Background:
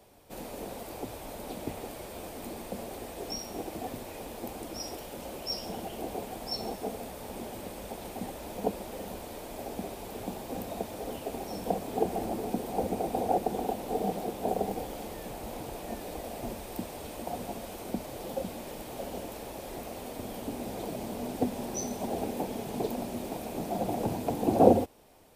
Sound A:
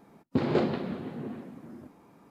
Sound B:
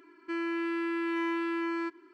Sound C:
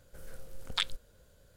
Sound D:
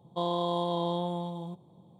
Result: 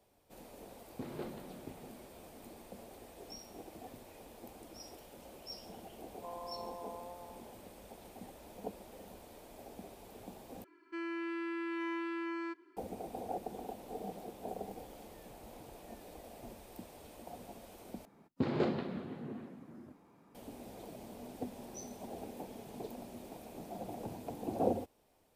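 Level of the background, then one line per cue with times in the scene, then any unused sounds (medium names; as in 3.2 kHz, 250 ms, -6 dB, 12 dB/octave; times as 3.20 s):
background -12.5 dB
0.64 s: add A -17.5 dB
6.07 s: add D -13 dB + Chebyshev band-pass 550–1300 Hz
10.64 s: replace with B -7 dB
18.05 s: replace with A -6.5 dB
not used: C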